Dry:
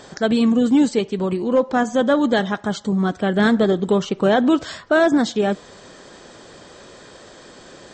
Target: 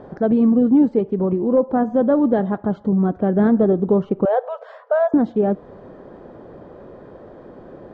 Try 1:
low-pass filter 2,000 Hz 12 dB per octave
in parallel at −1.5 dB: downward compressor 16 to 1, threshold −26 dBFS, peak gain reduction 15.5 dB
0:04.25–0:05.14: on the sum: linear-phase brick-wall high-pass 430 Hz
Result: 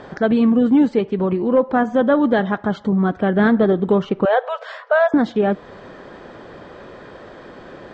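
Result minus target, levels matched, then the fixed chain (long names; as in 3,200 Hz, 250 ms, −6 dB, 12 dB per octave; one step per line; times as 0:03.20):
2,000 Hz band +11.5 dB
low-pass filter 740 Hz 12 dB per octave
in parallel at −1.5 dB: downward compressor 16 to 1, threshold −26 dBFS, peak gain reduction 15.5 dB
0:04.25–0:05.14: on the sum: linear-phase brick-wall high-pass 430 Hz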